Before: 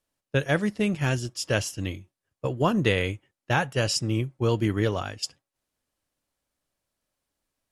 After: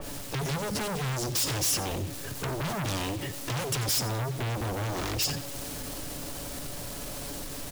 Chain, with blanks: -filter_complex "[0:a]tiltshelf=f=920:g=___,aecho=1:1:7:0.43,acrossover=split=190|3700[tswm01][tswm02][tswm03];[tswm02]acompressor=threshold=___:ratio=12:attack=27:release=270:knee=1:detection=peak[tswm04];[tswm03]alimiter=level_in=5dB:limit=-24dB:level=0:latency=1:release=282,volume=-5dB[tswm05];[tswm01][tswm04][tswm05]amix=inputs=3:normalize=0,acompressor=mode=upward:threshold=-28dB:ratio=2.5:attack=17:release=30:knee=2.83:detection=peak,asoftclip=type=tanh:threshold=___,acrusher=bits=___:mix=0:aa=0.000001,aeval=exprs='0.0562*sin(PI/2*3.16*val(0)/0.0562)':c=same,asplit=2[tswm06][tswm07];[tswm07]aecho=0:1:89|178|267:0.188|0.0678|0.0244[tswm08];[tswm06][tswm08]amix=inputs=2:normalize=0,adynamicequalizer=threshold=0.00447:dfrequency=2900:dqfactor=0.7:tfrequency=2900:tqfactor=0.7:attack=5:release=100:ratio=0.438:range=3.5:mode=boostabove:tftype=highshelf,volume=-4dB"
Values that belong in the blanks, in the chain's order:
6, -35dB, -25dB, 8